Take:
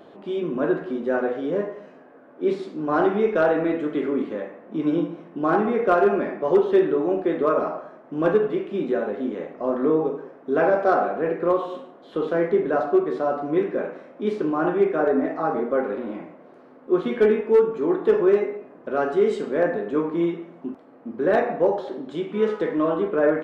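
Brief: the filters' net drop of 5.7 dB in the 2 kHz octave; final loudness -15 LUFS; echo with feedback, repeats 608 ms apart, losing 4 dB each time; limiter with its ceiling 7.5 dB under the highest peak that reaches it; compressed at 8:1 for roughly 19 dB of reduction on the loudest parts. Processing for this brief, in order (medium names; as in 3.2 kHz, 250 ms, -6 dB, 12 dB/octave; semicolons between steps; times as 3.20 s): peaking EQ 2 kHz -8.5 dB; compression 8:1, threshold -34 dBFS; peak limiter -29.5 dBFS; feedback delay 608 ms, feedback 63%, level -4 dB; trim +22 dB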